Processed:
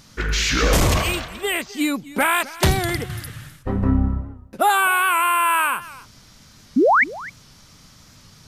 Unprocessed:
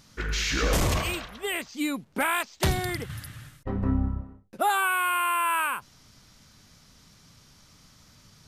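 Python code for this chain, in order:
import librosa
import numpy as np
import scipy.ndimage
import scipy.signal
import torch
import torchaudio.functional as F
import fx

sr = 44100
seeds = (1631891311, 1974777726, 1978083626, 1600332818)

y = fx.spec_paint(x, sr, seeds[0], shape='rise', start_s=6.76, length_s=0.28, low_hz=220.0, high_hz=2400.0, level_db=-21.0)
y = y + 10.0 ** (-18.5 / 20.0) * np.pad(y, (int(259 * sr / 1000.0), 0))[:len(y)]
y = fx.record_warp(y, sr, rpm=78.0, depth_cents=100.0)
y = y * librosa.db_to_amplitude(7.0)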